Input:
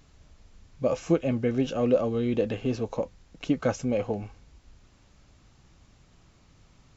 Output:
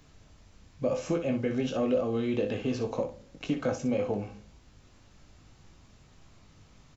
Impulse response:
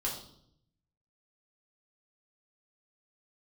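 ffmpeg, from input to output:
-filter_complex "[0:a]acrossover=split=82|760[s0][s1][s2];[s0]acompressor=threshold=0.00178:ratio=4[s3];[s1]acompressor=threshold=0.0398:ratio=4[s4];[s2]acompressor=threshold=0.0112:ratio=4[s5];[s3][s4][s5]amix=inputs=3:normalize=0,aecho=1:1:20|61:0.473|0.355,asplit=2[s6][s7];[1:a]atrim=start_sample=2205[s8];[s7][s8]afir=irnorm=-1:irlink=0,volume=0.168[s9];[s6][s9]amix=inputs=2:normalize=0,volume=0.891"

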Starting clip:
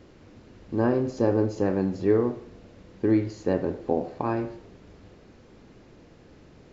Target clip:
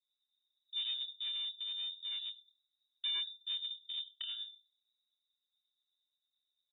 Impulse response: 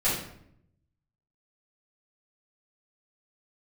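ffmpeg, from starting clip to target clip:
-filter_complex "[0:a]anlmdn=10,tremolo=f=8.8:d=0.51,aecho=1:1:72:0.112,acrossover=split=110[s0][s1];[s0]acontrast=70[s2];[s2][s1]amix=inputs=2:normalize=0,asplit=3[s3][s4][s5];[s3]bandpass=f=300:t=q:w=8,volume=1[s6];[s4]bandpass=f=870:t=q:w=8,volume=0.501[s7];[s5]bandpass=f=2240:t=q:w=8,volume=0.355[s8];[s6][s7][s8]amix=inputs=3:normalize=0,asplit=2[s9][s10];[s10]adelay=28,volume=0.501[s11];[s9][s11]amix=inputs=2:normalize=0,aresample=16000,asoftclip=type=hard:threshold=0.0211,aresample=44100,lowpass=f=3300:t=q:w=0.5098,lowpass=f=3300:t=q:w=0.6013,lowpass=f=3300:t=q:w=0.9,lowpass=f=3300:t=q:w=2.563,afreqshift=-3900,adynamicequalizer=threshold=0.00251:dfrequency=1600:dqfactor=0.7:tfrequency=1600:tqfactor=0.7:attack=5:release=100:ratio=0.375:range=2.5:mode=cutabove:tftype=highshelf"

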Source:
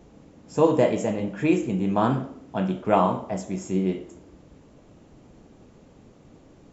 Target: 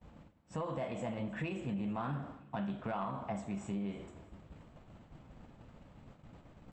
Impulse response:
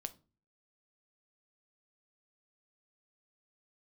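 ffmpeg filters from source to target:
-filter_complex "[0:a]alimiter=limit=0.141:level=0:latency=1:release=186,equalizer=f=350:w=1.1:g=-12.5,asetrate=46722,aresample=44100,atempo=0.943874,areverse,acompressor=mode=upward:threshold=0.00891:ratio=2.5,areverse,agate=range=0.0224:threshold=0.00708:ratio=3:detection=peak,equalizer=f=6600:w=0.91:g=-13.5,asoftclip=type=tanh:threshold=0.0794,acompressor=threshold=0.0126:ratio=2,asplit=2[s0][s1];[s1]aecho=0:1:317|634|951|1268:0.0891|0.0455|0.0232|0.0118[s2];[s0][s2]amix=inputs=2:normalize=0"

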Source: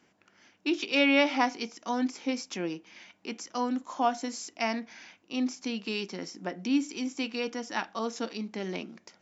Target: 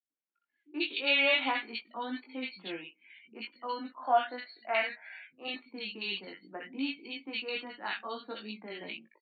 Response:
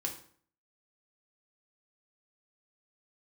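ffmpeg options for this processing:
-filter_complex "[0:a]asettb=1/sr,asplit=3[s0][s1][s2];[s0]atrim=end=3.934[s3];[s1]atrim=start=3.93:end=5.46,asetpts=PTS-STARTPTS,afade=t=in:d=0.004:c=qsin,afade=t=out:st=1.526:d=0.004:c=qsin,equalizer=f=250:t=o:w=0.67:g=-6,equalizer=f=630:t=o:w=0.67:g=8,equalizer=f=1600:t=o:w=0.67:g=8[s4];[s2]atrim=start=5.456[s5];[s3][s4]acrossfade=d=0.004:c1=hsin:c2=qsin[s6];[s6][s5]acrossfade=d=0.004:c1=qsin:c2=hsin,afftdn=nr=30:nf=-48,highshelf=f=2300:g=-5.5,acrossover=split=160|1500[s7][s8][s9];[s8]adelay=80[s10];[s9]adelay=140[s11];[s7][s10][s11]amix=inputs=3:normalize=0,acrossover=split=140|1700[s12][s13][s14];[s12]aeval=exprs='clip(val(0),-1,0.00299)':c=same[s15];[s13]crystalizer=i=10:c=0[s16];[s14]dynaudnorm=f=170:g=3:m=5.62[s17];[s15][s16][s17]amix=inputs=3:normalize=0,flanger=delay=18:depth=2.3:speed=0.56,afftfilt=real='re*between(b*sr/4096,110,4500)':imag='im*between(b*sr/4096,110,4500)':win_size=4096:overlap=0.75,volume=0.501"

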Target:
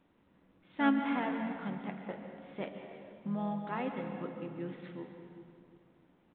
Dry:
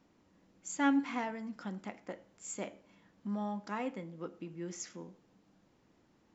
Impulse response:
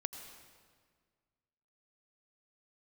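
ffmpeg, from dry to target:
-filter_complex "[0:a]asplit=2[s0][s1];[s1]adelay=64,lowpass=f=1800:p=1,volume=0.106,asplit=2[s2][s3];[s3]adelay=64,lowpass=f=1800:p=1,volume=0.24[s4];[s0][s2][s4]amix=inputs=3:normalize=0,asplit=2[s5][s6];[s6]asetrate=35002,aresample=44100,atempo=1.25992,volume=0.316[s7];[s5][s7]amix=inputs=2:normalize=0[s8];[1:a]atrim=start_sample=2205,asetrate=29547,aresample=44100[s9];[s8][s9]afir=irnorm=-1:irlink=0" -ar 8000 -c:a adpcm_g726 -b:a 40k

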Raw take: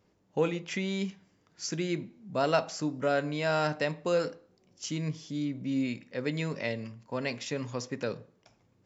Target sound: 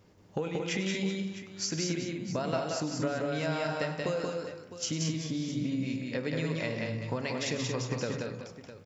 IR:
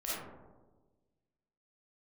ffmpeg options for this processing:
-filter_complex "[0:a]equalizer=f=100:t=o:w=0.77:g=4.5,bandreject=f=69.71:t=h:w=4,bandreject=f=139.42:t=h:w=4,bandreject=f=209.13:t=h:w=4,bandreject=f=278.84:t=h:w=4,bandreject=f=348.55:t=h:w=4,bandreject=f=418.26:t=h:w=4,bandreject=f=487.97:t=h:w=4,bandreject=f=557.68:t=h:w=4,bandreject=f=627.39:t=h:w=4,bandreject=f=697.1:t=h:w=4,bandreject=f=766.81:t=h:w=4,bandreject=f=836.52:t=h:w=4,bandreject=f=906.23:t=h:w=4,bandreject=f=975.94:t=h:w=4,bandreject=f=1045.65:t=h:w=4,bandreject=f=1115.36:t=h:w=4,bandreject=f=1185.07:t=h:w=4,bandreject=f=1254.78:t=h:w=4,bandreject=f=1324.49:t=h:w=4,bandreject=f=1394.2:t=h:w=4,bandreject=f=1463.91:t=h:w=4,bandreject=f=1533.62:t=h:w=4,bandreject=f=1603.33:t=h:w=4,bandreject=f=1673.04:t=h:w=4,bandreject=f=1742.75:t=h:w=4,bandreject=f=1812.46:t=h:w=4,bandreject=f=1882.17:t=h:w=4,bandreject=f=1951.88:t=h:w=4,bandreject=f=2021.59:t=h:w=4,bandreject=f=2091.3:t=h:w=4,bandreject=f=2161.01:t=h:w=4,bandreject=f=2230.72:t=h:w=4,bandreject=f=2300.43:t=h:w=4,bandreject=f=2370.14:t=h:w=4,bandreject=f=2439.85:t=h:w=4,bandreject=f=2509.56:t=h:w=4,bandreject=f=2579.27:t=h:w=4,bandreject=f=2648.98:t=h:w=4,acompressor=threshold=0.0126:ratio=10,asplit=2[s0][s1];[s1]aecho=0:1:100|180|227|381|658:0.237|0.708|0.376|0.237|0.2[s2];[s0][s2]amix=inputs=2:normalize=0,volume=2.37"

